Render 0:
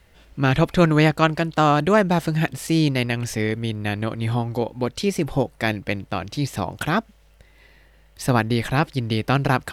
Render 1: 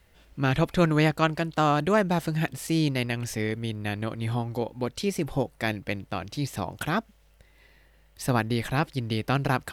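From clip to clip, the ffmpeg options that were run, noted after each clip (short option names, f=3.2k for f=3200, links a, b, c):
-af "highshelf=f=11k:g=5.5,volume=-5.5dB"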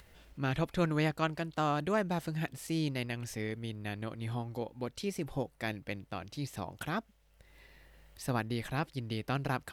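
-af "acompressor=mode=upward:threshold=-40dB:ratio=2.5,volume=-8.5dB"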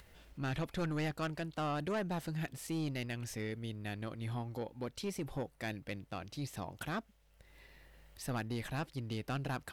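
-af "asoftclip=type=tanh:threshold=-29.5dB,volume=-1dB"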